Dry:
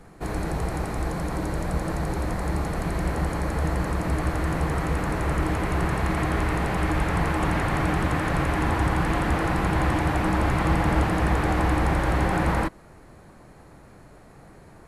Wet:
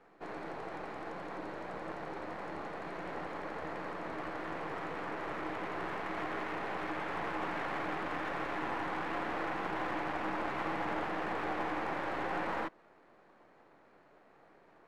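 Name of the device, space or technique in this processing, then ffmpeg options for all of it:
crystal radio: -af "highpass=350,lowpass=2900,aeval=exprs='if(lt(val(0),0),0.447*val(0),val(0))':channel_layout=same,volume=-6.5dB"

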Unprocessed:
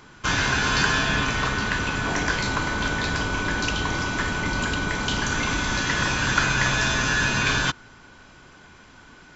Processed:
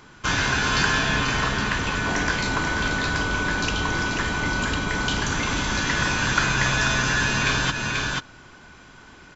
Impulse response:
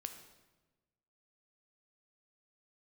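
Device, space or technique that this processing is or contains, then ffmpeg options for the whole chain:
ducked delay: -filter_complex "[0:a]asplit=3[link_01][link_02][link_03];[link_02]adelay=486,volume=-3.5dB[link_04];[link_03]apad=whole_len=434066[link_05];[link_04][link_05]sidechaincompress=threshold=-27dB:ratio=8:attack=27:release=151[link_06];[link_01][link_06]amix=inputs=2:normalize=0"

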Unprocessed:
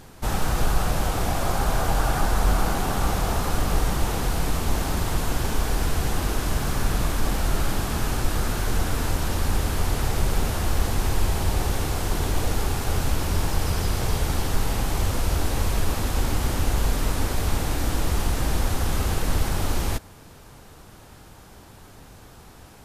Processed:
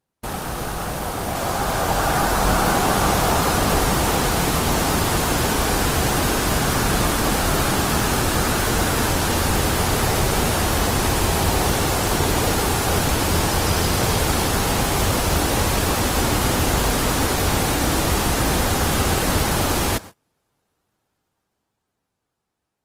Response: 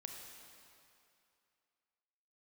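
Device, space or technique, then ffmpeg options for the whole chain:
video call: -af "highpass=frequency=160:poles=1,dynaudnorm=framelen=310:gausssize=13:maxgain=8dB,agate=range=-32dB:threshold=-35dB:ratio=16:detection=peak,volume=1.5dB" -ar 48000 -c:a libopus -b:a 24k

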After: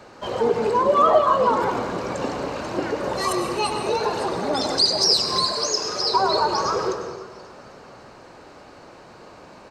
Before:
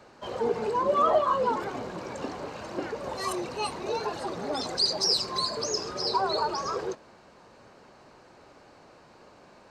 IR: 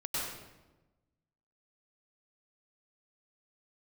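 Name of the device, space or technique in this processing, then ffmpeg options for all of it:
ducked reverb: -filter_complex "[0:a]asplit=3[link_01][link_02][link_03];[1:a]atrim=start_sample=2205[link_04];[link_02][link_04]afir=irnorm=-1:irlink=0[link_05];[link_03]apad=whole_len=428124[link_06];[link_05][link_06]sidechaincompress=threshold=-28dB:ratio=8:attack=16:release=325,volume=-7.5dB[link_07];[link_01][link_07]amix=inputs=2:normalize=0,asettb=1/sr,asplit=3[link_08][link_09][link_10];[link_08]atrim=end=5.524[link_11];[link_09]atrim=start=5.52:end=6.14,asetpts=PTS-STARTPTS,afade=type=in:duration=0.004:curve=qsin,afade=type=out:start_time=0.616:duration=0.004:curve=qsin,lowshelf=frequency=340:gain=-10[link_12];[link_10]atrim=start=6.136[link_13];[link_11][link_12]acrossfade=duration=0.004:curve1=hsin:curve2=qsin[link_14];[link_14][link_13]acrossfade=duration=0.004:curve1=qsin:curve2=hsin,asplit=6[link_15][link_16][link_17][link_18][link_19][link_20];[link_16]adelay=265,afreqshift=55,volume=-21dB[link_21];[link_17]adelay=530,afreqshift=110,volume=-25.3dB[link_22];[link_18]adelay=795,afreqshift=165,volume=-29.6dB[link_23];[link_19]adelay=1060,afreqshift=220,volume=-33.9dB[link_24];[link_20]adelay=1325,afreqshift=275,volume=-38.2dB[link_25];[link_15][link_21][link_22][link_23][link_24][link_25]amix=inputs=6:normalize=0,volume=5.5dB"

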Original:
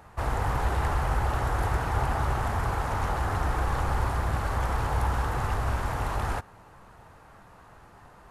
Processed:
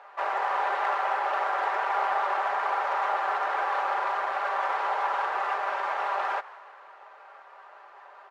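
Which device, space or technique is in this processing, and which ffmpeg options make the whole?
crystal radio: -filter_complex "[0:a]highpass=210,lowpass=2800,lowpass=7700,aecho=1:1:5.1:0.62,aeval=exprs='if(lt(val(0),0),0.708*val(0),val(0))':channel_layout=same,highpass=frequency=530:width=0.5412,highpass=frequency=530:width=1.3066,asplit=5[link_01][link_02][link_03][link_04][link_05];[link_02]adelay=160,afreqshift=99,volume=-21dB[link_06];[link_03]adelay=320,afreqshift=198,volume=-26dB[link_07];[link_04]adelay=480,afreqshift=297,volume=-31.1dB[link_08];[link_05]adelay=640,afreqshift=396,volume=-36.1dB[link_09];[link_01][link_06][link_07][link_08][link_09]amix=inputs=5:normalize=0,volume=5dB"

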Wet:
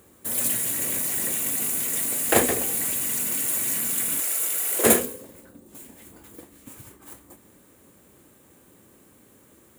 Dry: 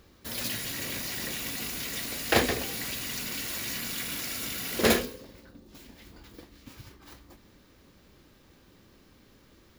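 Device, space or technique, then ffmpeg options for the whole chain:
budget condenser microphone: -filter_complex "[0:a]asettb=1/sr,asplit=3[link_01][link_02][link_03];[link_01]atrim=end=4.204[link_04];[link_02]atrim=start=4.2:end=4.85,asetpts=PTS-STARTPTS,afade=type=in:duration=0.004:curve=qsin,afade=type=out:start_time=0.646:duration=0.004:curve=qsin,highpass=frequency=380:width=0.5412,highpass=frequency=380:width=1.3066[link_05];[link_03]atrim=start=4.846[link_06];[link_04][link_05]acrossfade=duration=0.004:curve1=hsin:curve2=qsin[link_07];[link_07][link_06]acrossfade=duration=0.004:curve1=qsin:curve2=hsin,highpass=81,equalizer=frequency=490:width=0.47:gain=4.5,highshelf=frequency=6500:width_type=q:width=3:gain=10"

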